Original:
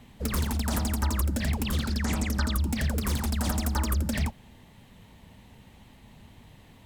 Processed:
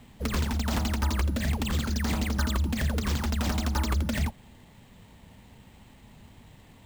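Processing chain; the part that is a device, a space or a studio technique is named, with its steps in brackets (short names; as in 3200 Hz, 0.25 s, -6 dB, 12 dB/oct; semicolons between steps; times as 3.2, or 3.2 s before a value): early companding sampler (sample-rate reducer 11000 Hz, jitter 0%; companded quantiser 8-bit)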